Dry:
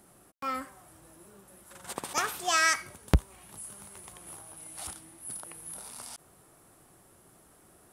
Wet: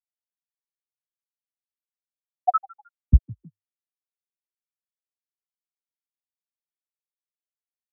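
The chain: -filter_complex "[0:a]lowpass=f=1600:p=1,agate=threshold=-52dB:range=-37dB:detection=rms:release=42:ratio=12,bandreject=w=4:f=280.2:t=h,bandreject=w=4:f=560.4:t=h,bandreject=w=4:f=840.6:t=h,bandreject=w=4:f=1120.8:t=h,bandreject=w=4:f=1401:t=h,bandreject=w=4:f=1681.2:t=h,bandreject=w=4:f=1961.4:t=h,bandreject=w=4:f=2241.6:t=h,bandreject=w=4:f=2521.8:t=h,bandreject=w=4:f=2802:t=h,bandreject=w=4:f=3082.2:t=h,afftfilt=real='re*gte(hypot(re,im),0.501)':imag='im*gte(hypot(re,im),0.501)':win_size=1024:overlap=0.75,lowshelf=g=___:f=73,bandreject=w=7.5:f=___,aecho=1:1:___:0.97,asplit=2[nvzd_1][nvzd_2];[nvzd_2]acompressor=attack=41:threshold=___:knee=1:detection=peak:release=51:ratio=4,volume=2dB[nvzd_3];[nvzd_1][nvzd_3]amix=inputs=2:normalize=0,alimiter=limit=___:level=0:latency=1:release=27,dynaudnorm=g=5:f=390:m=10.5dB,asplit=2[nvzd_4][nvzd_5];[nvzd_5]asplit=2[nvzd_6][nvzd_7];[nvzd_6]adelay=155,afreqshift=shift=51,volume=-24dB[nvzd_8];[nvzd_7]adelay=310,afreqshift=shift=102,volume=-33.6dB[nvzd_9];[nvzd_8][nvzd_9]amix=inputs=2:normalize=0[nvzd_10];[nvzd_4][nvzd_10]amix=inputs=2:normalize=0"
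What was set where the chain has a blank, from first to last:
-6, 670, 2.8, -37dB, -15dB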